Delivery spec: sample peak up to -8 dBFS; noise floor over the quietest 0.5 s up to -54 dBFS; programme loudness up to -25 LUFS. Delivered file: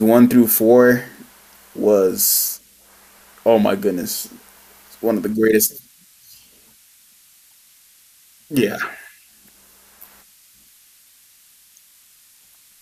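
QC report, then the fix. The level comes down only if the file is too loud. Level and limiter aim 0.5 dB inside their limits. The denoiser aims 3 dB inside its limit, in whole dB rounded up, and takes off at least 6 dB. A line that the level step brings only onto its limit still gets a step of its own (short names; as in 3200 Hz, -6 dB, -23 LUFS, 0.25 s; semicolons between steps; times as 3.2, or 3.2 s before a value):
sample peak -2.0 dBFS: fail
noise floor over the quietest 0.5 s -52 dBFS: fail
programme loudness -16.5 LUFS: fail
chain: gain -9 dB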